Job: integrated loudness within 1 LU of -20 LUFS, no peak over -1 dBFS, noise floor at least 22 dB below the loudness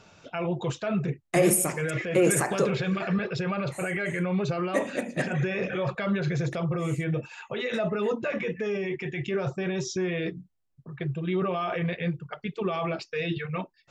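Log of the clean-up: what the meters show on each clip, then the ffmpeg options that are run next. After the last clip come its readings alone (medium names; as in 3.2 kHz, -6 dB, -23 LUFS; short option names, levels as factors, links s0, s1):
loudness -28.5 LUFS; peak level -11.0 dBFS; loudness target -20.0 LUFS
-> -af "volume=2.66"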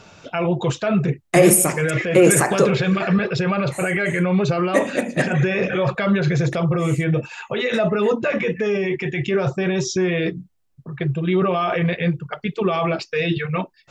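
loudness -20.0 LUFS; peak level -2.5 dBFS; noise floor -55 dBFS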